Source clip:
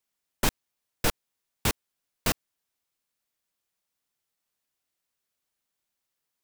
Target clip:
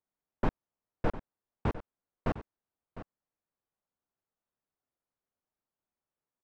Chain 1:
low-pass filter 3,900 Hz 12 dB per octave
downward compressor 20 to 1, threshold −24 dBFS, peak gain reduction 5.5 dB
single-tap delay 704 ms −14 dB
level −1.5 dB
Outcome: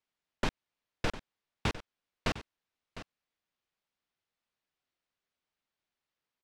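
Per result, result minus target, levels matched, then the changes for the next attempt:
4,000 Hz band +15.5 dB; downward compressor: peak gain reduction +5.5 dB
change: low-pass filter 1,100 Hz 12 dB per octave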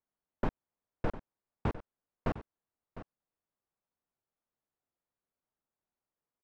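downward compressor: peak gain reduction +5 dB
remove: downward compressor 20 to 1, threshold −24 dBFS, peak gain reduction 5 dB

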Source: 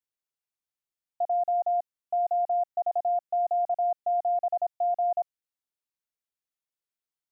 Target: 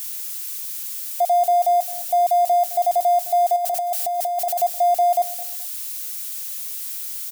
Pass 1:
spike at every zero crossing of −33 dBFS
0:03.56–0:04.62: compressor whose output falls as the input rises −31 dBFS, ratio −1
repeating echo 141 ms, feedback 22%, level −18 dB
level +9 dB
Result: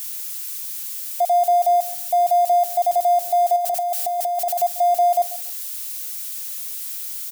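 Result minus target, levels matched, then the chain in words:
echo 72 ms early
spike at every zero crossing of −33 dBFS
0:03.56–0:04.62: compressor whose output falls as the input rises −31 dBFS, ratio −1
repeating echo 213 ms, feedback 22%, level −18 dB
level +9 dB

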